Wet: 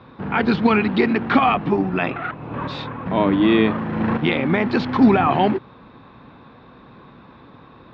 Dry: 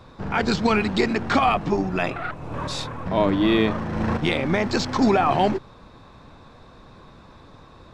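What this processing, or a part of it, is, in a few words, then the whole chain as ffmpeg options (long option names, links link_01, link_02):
guitar cabinet: -filter_complex "[0:a]highpass=78,equalizer=frequency=84:width_type=q:width=4:gain=-8,equalizer=frequency=250:width_type=q:width=4:gain=4,equalizer=frequency=620:width_type=q:width=4:gain=-4,lowpass=frequency=3400:width=0.5412,lowpass=frequency=3400:width=1.3066,asettb=1/sr,asplit=3[link_01][link_02][link_03];[link_01]atrim=end=4.794[link_04];[link_02]atrim=start=4.79:end=5.27,asetpts=PTS-STARTPTS,afade=type=in:duration=0.004:curve=qsin,afade=type=out:start_time=0.476:duration=0.004:curve=qsin,asubboost=boost=10:cutoff=230[link_05];[link_03]atrim=start=5.266[link_06];[link_04][link_05]acrossfade=duration=0.004:curve1=hsin:curve2=qsin[link_07];[link_07][link_06]acrossfade=duration=0.004:curve1=qsin:curve2=hsin,volume=3dB"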